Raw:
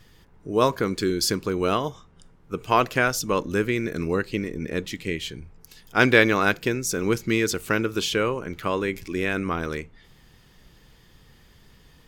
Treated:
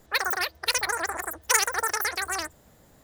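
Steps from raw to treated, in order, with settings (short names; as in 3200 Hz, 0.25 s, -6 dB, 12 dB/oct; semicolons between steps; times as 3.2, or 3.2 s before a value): dynamic EQ 6000 Hz, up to +6 dB, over -42 dBFS, Q 0.74; wide varispeed 3.98×; gain -3.5 dB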